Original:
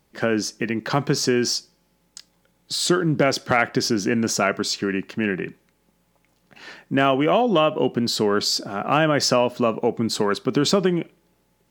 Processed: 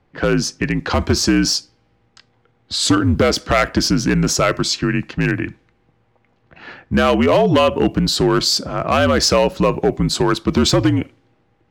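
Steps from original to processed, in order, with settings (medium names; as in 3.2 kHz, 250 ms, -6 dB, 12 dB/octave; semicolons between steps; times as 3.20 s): hard clipper -12.5 dBFS, distortion -15 dB; level-controlled noise filter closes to 2.3 kHz, open at -18.5 dBFS; frequency shift -60 Hz; trim +5.5 dB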